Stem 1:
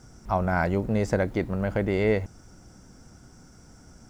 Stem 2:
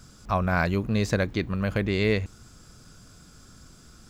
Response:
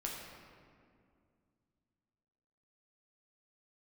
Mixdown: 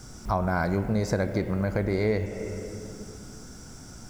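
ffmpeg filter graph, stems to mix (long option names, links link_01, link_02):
-filter_complex "[0:a]highshelf=frequency=5100:gain=8,volume=1dB,asplit=2[link_01][link_02];[link_02]volume=-4dB[link_03];[1:a]volume=-1.5dB[link_04];[2:a]atrim=start_sample=2205[link_05];[link_03][link_05]afir=irnorm=-1:irlink=0[link_06];[link_01][link_04][link_06]amix=inputs=3:normalize=0,acompressor=threshold=-29dB:ratio=2"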